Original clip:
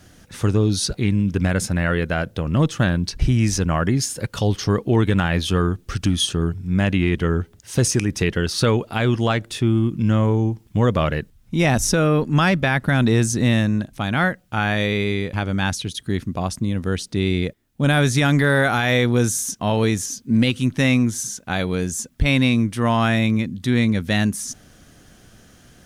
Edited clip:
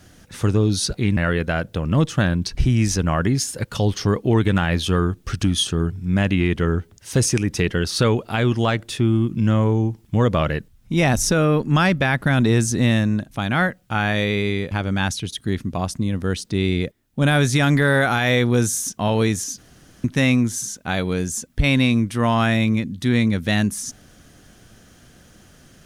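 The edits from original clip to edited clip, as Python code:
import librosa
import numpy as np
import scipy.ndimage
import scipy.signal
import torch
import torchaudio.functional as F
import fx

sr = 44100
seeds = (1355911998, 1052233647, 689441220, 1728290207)

y = fx.edit(x, sr, fx.cut(start_s=1.17, length_s=0.62),
    fx.room_tone_fill(start_s=20.2, length_s=0.46), tone=tone)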